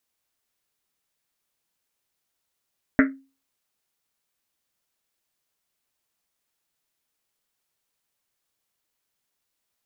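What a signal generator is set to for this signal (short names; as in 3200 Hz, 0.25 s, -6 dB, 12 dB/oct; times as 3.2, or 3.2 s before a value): Risset drum, pitch 270 Hz, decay 0.33 s, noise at 1700 Hz, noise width 720 Hz, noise 30%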